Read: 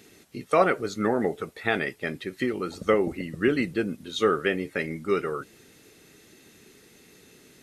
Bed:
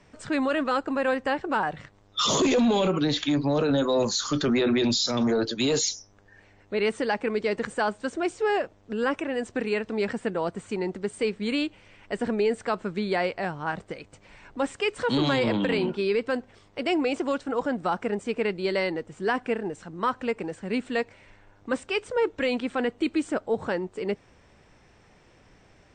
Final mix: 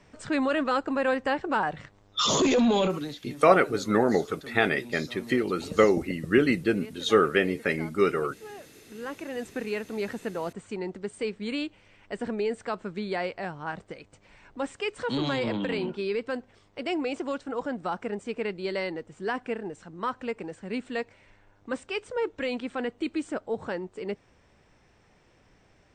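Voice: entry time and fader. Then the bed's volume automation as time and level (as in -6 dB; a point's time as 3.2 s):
2.90 s, +2.0 dB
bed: 2.84 s -0.5 dB
3.24 s -19.5 dB
8.61 s -19.5 dB
9.4 s -4.5 dB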